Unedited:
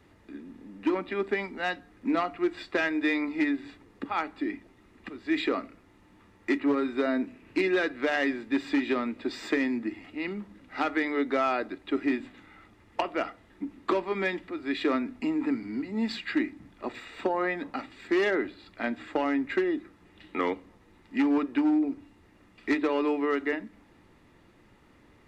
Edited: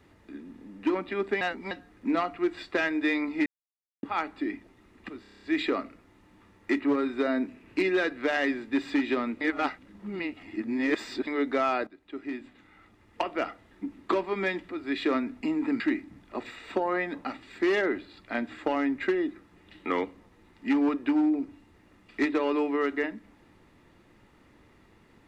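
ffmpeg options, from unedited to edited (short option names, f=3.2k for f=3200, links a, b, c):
-filter_complex "[0:a]asplit=16[a][b][c][d][e][f][g][h][i][j][k][l][m][n][o][p];[a]atrim=end=1.412[q];[b]atrim=start=1.408:end=1.712,asetpts=PTS-STARTPTS,areverse[r];[c]atrim=start=1.708:end=3.46,asetpts=PTS-STARTPTS,afade=t=out:st=1.748:d=0.004:c=hsin[s];[d]atrim=start=3.46:end=4.03,asetpts=PTS-STARTPTS,volume=0[t];[e]atrim=start=4.03:end=5.242,asetpts=PTS-STARTPTS,afade=t=in:d=0.004:c=hsin[u];[f]atrim=start=5.208:end=5.242[v];[g]atrim=start=5.208:end=5.242[w];[h]atrim=start=5.208:end=5.242[x];[i]atrim=start=5.208:end=5.242[y];[j]atrim=start=5.208:end=5.242[z];[k]atrim=start=5.208:end=5.242[aa];[l]atrim=start=5.208:end=9.202[ab];[m]atrim=start=9.198:end=11.062,asetpts=PTS-STARTPTS,areverse[ac];[n]atrim=start=11.058:end=11.66,asetpts=PTS-STARTPTS,afade=t=out:st=0.598:d=0.004:c=hsin:silence=0.149624[ad];[o]atrim=start=11.66:end=15.592,asetpts=PTS-STARTPTS,afade=t=in:d=1.53:silence=0.149624[ae];[p]atrim=start=16.288[af];[q][r]acrossfade=d=0.004:c1=hsin:c2=hsin[ag];[s][t][u]concat=n=3:v=0:a=1[ah];[ag][ah]acrossfade=d=0.004:c1=hsin:c2=hsin[ai];[ai][v]acrossfade=d=0.004:c1=hsin:c2=hsin[aj];[aj][w]acrossfade=d=0.004:c1=hsin:c2=hsin[ak];[ak][x]acrossfade=d=0.004:c1=hsin:c2=hsin[al];[al][y]acrossfade=d=0.004:c1=hsin:c2=hsin[am];[am][z]acrossfade=d=0.004:c1=hsin:c2=hsin[an];[an][aa]acrossfade=d=0.004:c1=hsin:c2=hsin[ao];[ao][ab]acrossfade=d=0.004:c1=hsin:c2=hsin[ap];[ap][ac]acrossfade=d=0.004:c1=hsin:c2=hsin[aq];[ad][ae]concat=n=2:v=0:a=1[ar];[aq][ar]acrossfade=d=0.004:c1=hsin:c2=hsin[as];[as][af]acrossfade=d=0.004:c1=hsin:c2=hsin"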